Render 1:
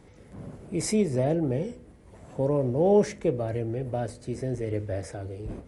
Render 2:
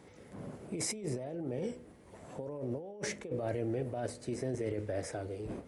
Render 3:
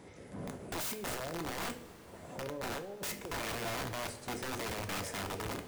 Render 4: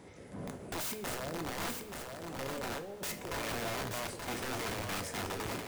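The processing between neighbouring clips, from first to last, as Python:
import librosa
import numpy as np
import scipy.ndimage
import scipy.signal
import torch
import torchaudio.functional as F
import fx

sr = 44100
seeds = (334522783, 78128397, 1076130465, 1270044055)

y1 = fx.highpass(x, sr, hz=210.0, slope=6)
y1 = fx.over_compress(y1, sr, threshold_db=-33.0, ratio=-1.0)
y1 = F.gain(torch.from_numpy(y1), -4.5).numpy()
y2 = fx.rider(y1, sr, range_db=4, speed_s=2.0)
y2 = (np.mod(10.0 ** (33.0 / 20.0) * y2 + 1.0, 2.0) - 1.0) / 10.0 ** (33.0 / 20.0)
y2 = fx.rev_double_slope(y2, sr, seeds[0], early_s=0.37, late_s=4.7, knee_db=-18, drr_db=6.5)
y3 = y2 + 10.0 ** (-5.5 / 20.0) * np.pad(y2, (int(879 * sr / 1000.0), 0))[:len(y2)]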